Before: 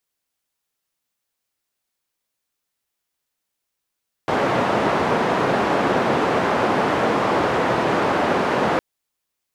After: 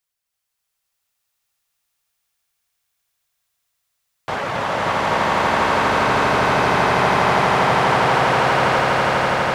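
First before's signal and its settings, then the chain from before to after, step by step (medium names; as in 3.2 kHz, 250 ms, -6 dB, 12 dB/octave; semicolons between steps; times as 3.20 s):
noise band 160–920 Hz, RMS -19.5 dBFS 4.51 s
reverb removal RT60 0.67 s; peaking EQ 310 Hz -11 dB 1.4 oct; on a send: echo with a slow build-up 82 ms, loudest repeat 8, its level -4 dB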